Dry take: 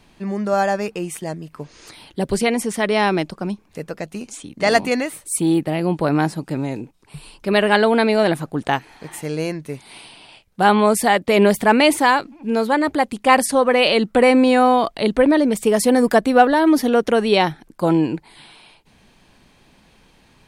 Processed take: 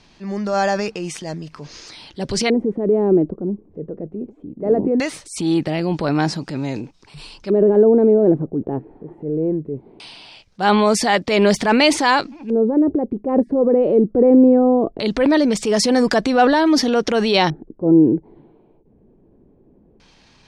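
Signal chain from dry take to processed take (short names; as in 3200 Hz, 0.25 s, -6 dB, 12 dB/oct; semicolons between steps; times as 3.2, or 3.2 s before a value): transient shaper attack -6 dB, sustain +5 dB; LFO low-pass square 0.2 Hz 400–5500 Hz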